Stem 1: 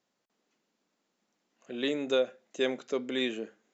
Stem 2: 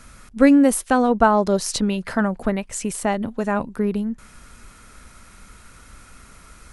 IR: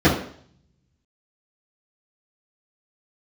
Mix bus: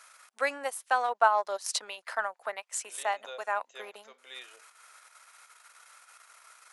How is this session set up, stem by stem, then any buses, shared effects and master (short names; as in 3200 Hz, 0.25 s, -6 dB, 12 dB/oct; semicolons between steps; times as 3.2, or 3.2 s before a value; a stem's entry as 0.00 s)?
-7.0 dB, 1.15 s, no send, harmonic-percussive split percussive -6 dB
-4.5 dB, 0.00 s, no send, transient shaper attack 0 dB, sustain -12 dB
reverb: off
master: HPF 690 Hz 24 dB/oct